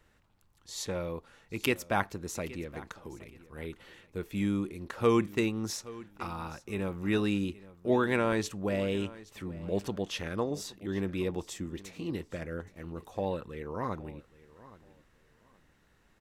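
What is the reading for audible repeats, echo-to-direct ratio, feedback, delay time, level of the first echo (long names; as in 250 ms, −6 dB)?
2, −19.0 dB, 23%, 822 ms, −19.0 dB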